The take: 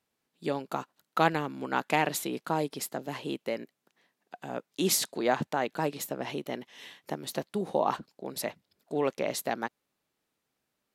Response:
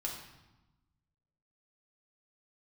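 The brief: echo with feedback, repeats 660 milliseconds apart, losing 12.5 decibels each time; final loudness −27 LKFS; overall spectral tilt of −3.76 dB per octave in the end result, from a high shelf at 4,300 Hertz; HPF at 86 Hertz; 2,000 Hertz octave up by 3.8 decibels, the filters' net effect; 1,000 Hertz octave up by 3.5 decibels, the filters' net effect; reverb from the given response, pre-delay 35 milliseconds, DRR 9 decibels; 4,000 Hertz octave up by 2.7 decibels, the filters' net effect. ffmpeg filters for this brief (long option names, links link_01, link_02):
-filter_complex "[0:a]highpass=86,equalizer=frequency=1000:width_type=o:gain=4,equalizer=frequency=2000:width_type=o:gain=3.5,equalizer=frequency=4000:width_type=o:gain=6,highshelf=frequency=4300:gain=-7,aecho=1:1:660|1320|1980:0.237|0.0569|0.0137,asplit=2[link_01][link_02];[1:a]atrim=start_sample=2205,adelay=35[link_03];[link_02][link_03]afir=irnorm=-1:irlink=0,volume=-10dB[link_04];[link_01][link_04]amix=inputs=2:normalize=0,volume=2.5dB"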